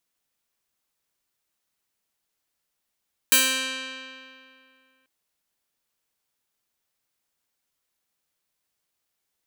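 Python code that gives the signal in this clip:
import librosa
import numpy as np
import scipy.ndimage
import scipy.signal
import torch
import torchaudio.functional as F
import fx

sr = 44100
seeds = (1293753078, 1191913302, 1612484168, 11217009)

y = fx.pluck(sr, length_s=1.74, note=60, decay_s=2.46, pick=0.38, brightness='bright')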